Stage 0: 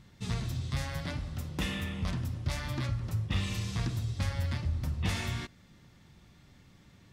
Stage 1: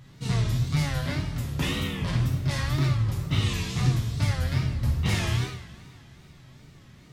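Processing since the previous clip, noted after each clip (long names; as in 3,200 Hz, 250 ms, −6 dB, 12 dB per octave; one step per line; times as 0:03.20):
coupled-rooms reverb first 0.68 s, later 3 s, from −20 dB, DRR −2.5 dB
tape wow and flutter 130 cents
level +2 dB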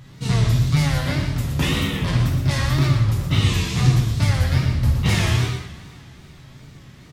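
single-tap delay 119 ms −7.5 dB
level +6 dB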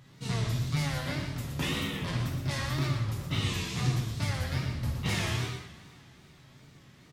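low-shelf EQ 91 Hz −11.5 dB
level −8.5 dB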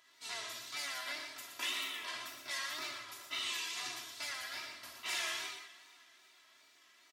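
Bessel high-pass filter 1,200 Hz, order 2
comb filter 3 ms, depth 84%
level −4 dB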